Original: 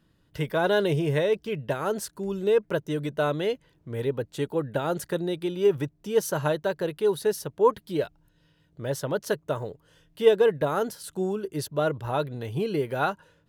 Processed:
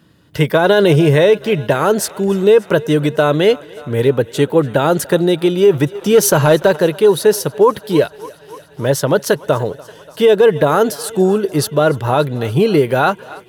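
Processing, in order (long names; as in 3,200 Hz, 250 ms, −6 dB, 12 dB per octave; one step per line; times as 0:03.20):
high-pass filter 88 Hz
on a send: feedback echo with a high-pass in the loop 290 ms, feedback 79%, high-pass 320 Hz, level −22.5 dB
0:05.95–0:06.76: on the sum: leveller curve on the samples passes 1
boost into a limiter +16.5 dB
level −1.5 dB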